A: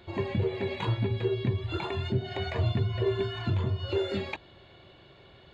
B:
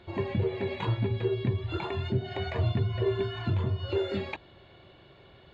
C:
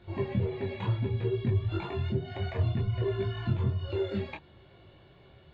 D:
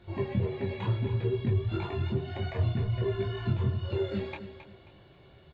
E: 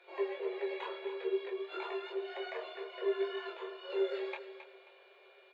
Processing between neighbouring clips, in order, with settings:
low-pass 3.9 kHz 6 dB/octave
tone controls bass +5 dB, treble -4 dB; detune thickener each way 21 cents
feedback delay 268 ms, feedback 30%, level -11 dB
rippled Chebyshev high-pass 380 Hz, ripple 3 dB; whistle 2.4 kHz -65 dBFS

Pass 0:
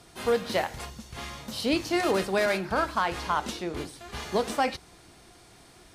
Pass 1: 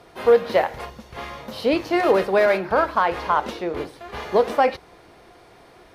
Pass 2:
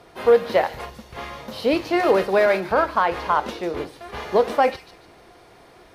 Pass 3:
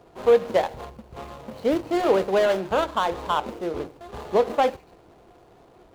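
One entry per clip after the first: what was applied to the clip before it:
graphic EQ 500/1000/2000/8000 Hz +10/+5/+4/-10 dB
feedback echo behind a high-pass 146 ms, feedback 31%, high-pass 4.5 kHz, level -5 dB
median filter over 25 samples; trim -1.5 dB

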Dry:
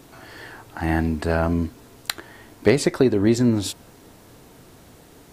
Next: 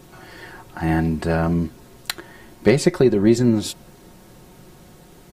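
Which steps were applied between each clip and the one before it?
bass shelf 220 Hz +5.5 dB; comb 5.5 ms, depth 56%; trim -1 dB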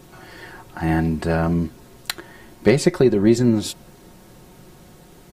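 no audible change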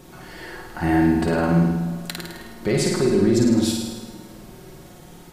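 peak limiter -12 dBFS, peak gain reduction 10 dB; flutter echo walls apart 9 m, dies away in 0.94 s; on a send at -11 dB: reverberation RT60 1.9 s, pre-delay 74 ms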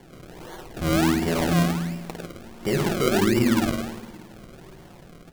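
decimation with a swept rate 34×, swing 100% 1.4 Hz; trim -3 dB

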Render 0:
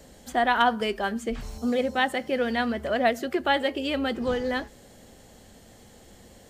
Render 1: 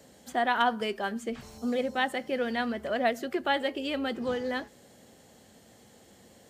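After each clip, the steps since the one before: high-pass 110 Hz 12 dB/octave; trim -4 dB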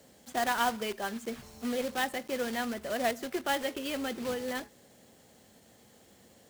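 block-companded coder 3-bit; trim -3.5 dB

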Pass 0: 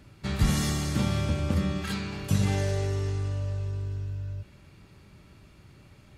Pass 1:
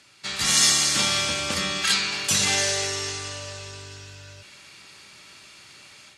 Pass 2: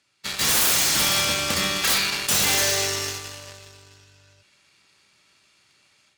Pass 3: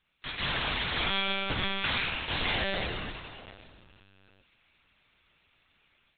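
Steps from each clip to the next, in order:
frequency weighting ITU-R 468; level rider gain up to 7.5 dB
integer overflow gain 15 dB; Chebyshev shaper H 5 -8 dB, 7 -8 dB, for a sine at -15 dBFS
LPC vocoder at 8 kHz pitch kept; trim -5 dB

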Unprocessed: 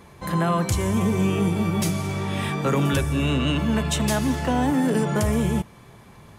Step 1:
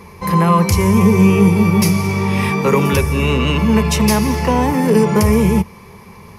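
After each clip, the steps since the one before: rippled EQ curve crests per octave 0.84, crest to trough 10 dB; trim +7 dB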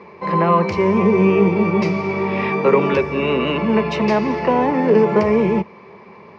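cabinet simulation 220–3700 Hz, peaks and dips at 370 Hz +5 dB, 610 Hz +7 dB, 3.3 kHz -6 dB; trim -1.5 dB

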